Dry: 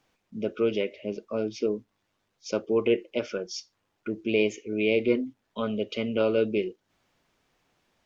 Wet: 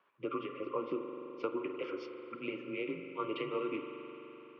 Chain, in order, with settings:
downward compressor, threshold −29 dBFS, peak gain reduction 11 dB
time stretch by overlap-add 0.57×, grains 170 ms
spring reverb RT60 3.8 s, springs 42 ms, chirp 45 ms, DRR 5 dB
frequency shifter −88 Hz
loudspeaker in its box 460–2,600 Hz, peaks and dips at 740 Hz −10 dB, 1,100 Hz +8 dB, 2,100 Hz −6 dB
level +3 dB

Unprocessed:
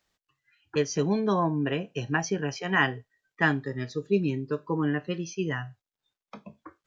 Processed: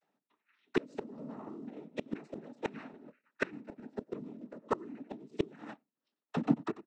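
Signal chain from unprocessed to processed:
channel vocoder with a chord as carrier minor triad, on A3
high-shelf EQ 3,600 Hz −10 dB
mains-hum notches 60/120/180/240/300/360/420/480/540 Hz
leveller curve on the samples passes 2
on a send: single-tap delay 92 ms −17.5 dB
on the sum: cochlear-implant simulation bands 12
in parallel at −0.5 dB: brickwall limiter −25 dBFS, peak gain reduction 17.5 dB
on the sum: gate with flip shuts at −17 dBFS, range −31 dB
shaped tremolo saw down 3.4 Hz, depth 50%
dynamic equaliser 710 Hz, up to −6 dB, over −50 dBFS, Q 0.89
automatic gain control gain up to 3.5 dB
level +4 dB

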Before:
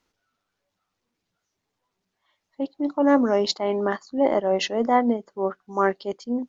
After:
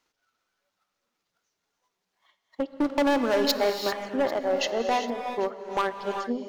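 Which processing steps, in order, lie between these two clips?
low-shelf EQ 320 Hz −11 dB
transient designer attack +10 dB, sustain −4 dB
0:02.72–0:03.70: leveller curve on the samples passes 2
in parallel at +3 dB: downward compressor, threshold −28 dBFS, peak gain reduction 17.5 dB
on the sum: hard clipping −12.5 dBFS, distortion −9 dB
pitch vibrato 11 Hz 18 cents
on a send: feedback echo with a high-pass in the loop 793 ms, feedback 30%, level −20.5 dB
on the sum: reverb whose tail is shaped and stops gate 420 ms rising, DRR 5.5 dB
level −7.5 dB

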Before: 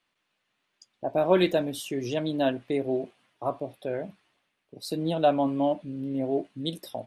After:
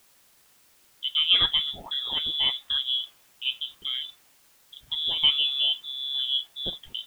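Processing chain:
voice inversion scrambler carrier 3,700 Hz
bit-depth reduction 10 bits, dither triangular

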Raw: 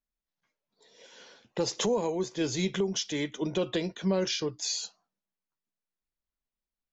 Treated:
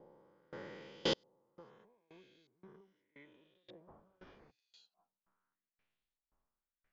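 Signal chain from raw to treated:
peak hold with a rise ahead of every peak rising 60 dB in 2.03 s
0:03.87–0:04.50: wind on the microphone 600 Hz −21 dBFS
auto-filter low-pass saw up 0.81 Hz 770–4,000 Hz
gate with flip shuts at −26 dBFS, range −38 dB
tremolo with a ramp in dB decaying 1.9 Hz, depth 28 dB
level +9 dB

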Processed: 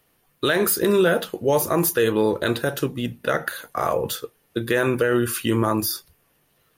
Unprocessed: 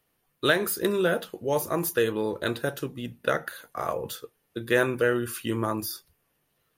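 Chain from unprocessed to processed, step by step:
brickwall limiter −18 dBFS, peak gain reduction 9.5 dB
level +8.5 dB

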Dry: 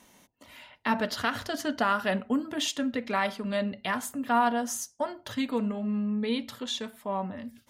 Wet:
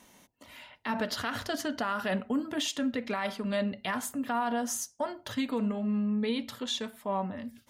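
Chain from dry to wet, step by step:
brickwall limiter −21.5 dBFS, peak gain reduction 7 dB

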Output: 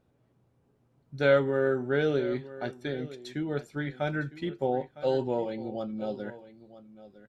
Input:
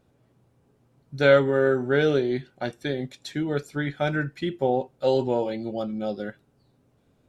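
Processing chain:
high-shelf EQ 4,200 Hz −5.5 dB
on a send: single-tap delay 958 ms −16.5 dB
on the sum: level −5 dB

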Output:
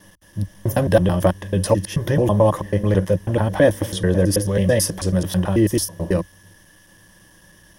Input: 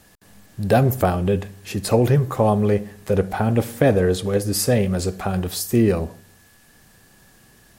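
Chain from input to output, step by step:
slices reordered back to front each 109 ms, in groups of 3
EQ curve with evenly spaced ripples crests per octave 1.2, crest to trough 11 dB

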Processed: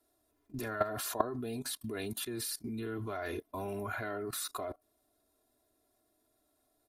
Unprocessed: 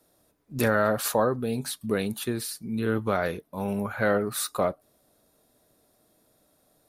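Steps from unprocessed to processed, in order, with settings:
comb filter 2.9 ms, depth 89%
output level in coarse steps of 19 dB

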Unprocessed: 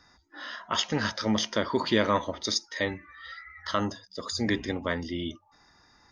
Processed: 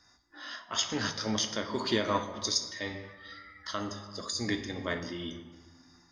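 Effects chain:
parametric band 8,100 Hz +10 dB 1.5 octaves
on a send at −4.5 dB: convolution reverb RT60 1.4 s, pre-delay 3 ms
on the sum: amplitude modulation by smooth noise, depth 55%
level −4 dB

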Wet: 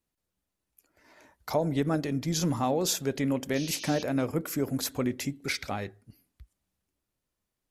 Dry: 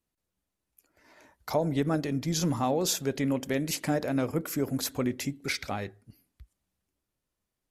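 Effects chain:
sound drawn into the spectrogram noise, 0:03.55–0:04.03, 2,300–6,600 Hz −42 dBFS

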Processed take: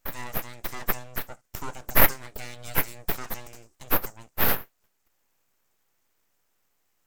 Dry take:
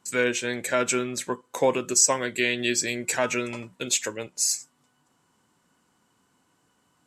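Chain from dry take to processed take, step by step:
high shelf with overshoot 4,300 Hz +11 dB, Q 3
full-wave rectification
level −11 dB

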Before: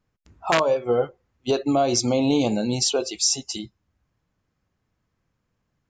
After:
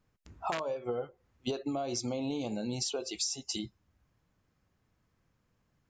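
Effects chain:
downward compressor 16 to 1, threshold −31 dBFS, peak gain reduction 16.5 dB

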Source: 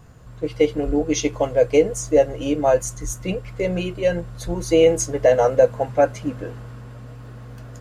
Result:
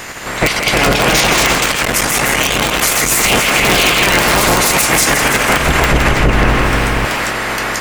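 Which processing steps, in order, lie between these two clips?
ceiling on every frequency bin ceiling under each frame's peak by 30 dB
parametric band 2,100 Hz +7 dB 0.52 octaves
compressor whose output falls as the input rises −23 dBFS, ratio −0.5
wrap-around overflow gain 10.5 dB
0:06.11–0:07.05: RIAA equalisation playback
feedback echo with a high-pass in the loop 164 ms, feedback 64%, level −8 dB
delay with pitch and tempo change per echo 356 ms, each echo +2 semitones, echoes 2
boost into a limiter +13 dB
0:01.63–0:03.12: saturating transformer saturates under 450 Hz
level −1 dB

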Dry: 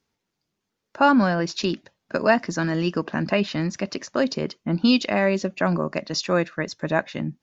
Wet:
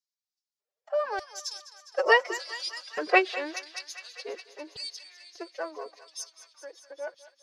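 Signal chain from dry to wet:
source passing by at 0:02.75, 27 m/s, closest 12 metres
auto-filter high-pass square 0.84 Hz 520–4,600 Hz
phase-vocoder pitch shift with formants kept +11.5 semitones
feedback echo with a high-pass in the loop 204 ms, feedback 80%, high-pass 850 Hz, level −14 dB

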